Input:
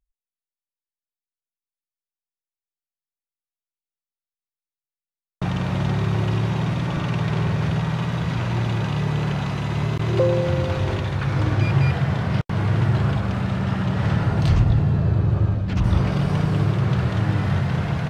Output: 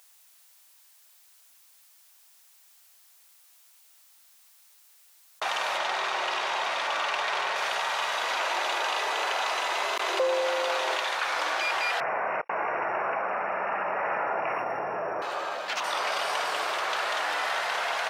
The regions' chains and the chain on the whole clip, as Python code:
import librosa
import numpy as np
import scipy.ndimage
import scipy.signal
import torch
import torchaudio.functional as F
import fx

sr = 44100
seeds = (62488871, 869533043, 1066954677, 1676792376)

y = fx.chain(x, sr, fx.zero_step(step_db=-37.5),
    fx.air_absorb(metres=60.0), at=(5.77, 7.56))
y = fx.chain(y, sr, fx.highpass(hz=250.0, slope=24),
    fx.low_shelf(hz=410.0, db=8.5), at=(8.23, 10.95))
y = fx.chain(y, sr, fx.tilt_eq(slope=-4.0),
    fx.notch(hz=2600.0, q=18.0),
    fx.resample_bad(factor=8, down='none', up='filtered'), at=(12.0, 15.22))
y = scipy.signal.sosfilt(scipy.signal.butter(4, 640.0, 'highpass', fs=sr, output='sos'), y)
y = fx.high_shelf(y, sr, hz=4300.0, db=6.0)
y = fx.env_flatten(y, sr, amount_pct=50)
y = y * 10.0 ** (-2.0 / 20.0)